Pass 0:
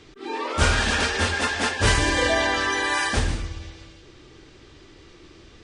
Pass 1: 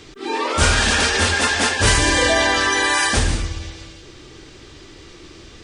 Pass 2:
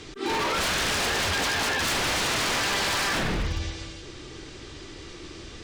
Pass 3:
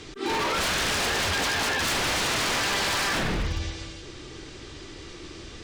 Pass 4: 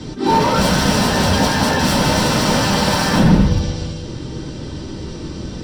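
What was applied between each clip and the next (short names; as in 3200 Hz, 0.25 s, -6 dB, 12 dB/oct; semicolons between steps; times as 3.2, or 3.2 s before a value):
high shelf 5800 Hz +8.5 dB; in parallel at +0.5 dB: limiter -16.5 dBFS, peak gain reduction 11 dB
treble ducked by the level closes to 2900 Hz, closed at -15.5 dBFS; wavefolder -21 dBFS
nothing audible
reverb RT60 0.20 s, pre-delay 3 ms, DRR -3 dB; gain -2.5 dB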